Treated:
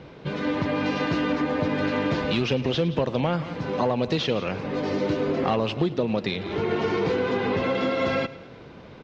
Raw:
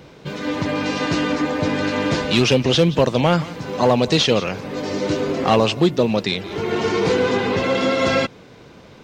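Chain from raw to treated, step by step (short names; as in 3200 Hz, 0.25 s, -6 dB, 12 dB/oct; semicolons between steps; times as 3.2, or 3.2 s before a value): compressor 4:1, threshold -21 dBFS, peak gain reduction 9 dB; air absorption 170 m; feedback echo 0.107 s, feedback 52%, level -18 dB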